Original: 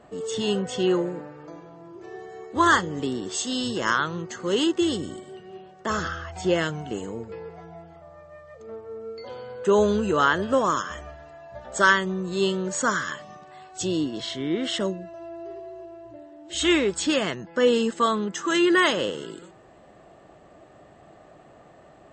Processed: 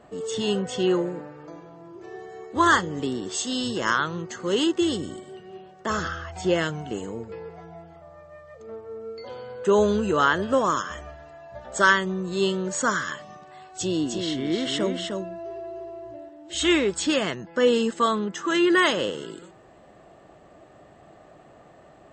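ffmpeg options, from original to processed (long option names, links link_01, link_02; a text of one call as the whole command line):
ffmpeg -i in.wav -filter_complex "[0:a]asettb=1/sr,asplit=3[link_01][link_02][link_03];[link_01]atrim=end=13.654[link_04];[link_02]atrim=start=13.65:end=16.29,asetpts=PTS-STARTPTS,afade=type=in:duration=0.004:curve=qsin,afade=type=out:start_time=2.636:duration=0.004:curve=qsin,aecho=1:1:306:0.596,atrim=end_sample=116424[link_05];[link_03]atrim=start=16.286[link_06];[link_04][link_05]acrossfade=duration=0.004:curve1=hsin:curve2=qsin[link_07];[link_07][link_06]acrossfade=duration=0.004:curve1=qsin:curve2=hsin,asettb=1/sr,asplit=3[link_08][link_09][link_10];[link_08]atrim=end=18.194[link_11];[link_09]atrim=start=18.19:end=18.7,asetpts=PTS-STARTPTS,afade=type=in:duration=0.004:curve=qsin,afade=type=out:start_time=0.506:duration=0.004:curve=qsin,highshelf=frequency=7200:gain=-9.5[link_12];[link_10]atrim=start=18.696[link_13];[link_11][link_12]acrossfade=duration=0.004:curve1=hsin:curve2=qsin[link_14];[link_14][link_13]acrossfade=duration=0.004:curve1=qsin:curve2=hsin" out.wav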